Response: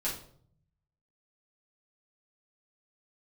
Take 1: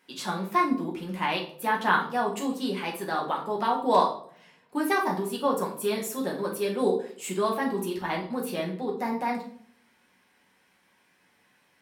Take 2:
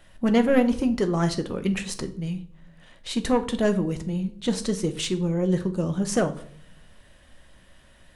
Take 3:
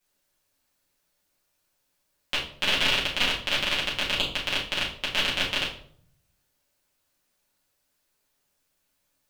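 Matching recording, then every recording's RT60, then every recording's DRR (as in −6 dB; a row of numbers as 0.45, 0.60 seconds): 3; 0.60, 0.60, 0.60 seconds; −2.0, 7.5, −8.0 decibels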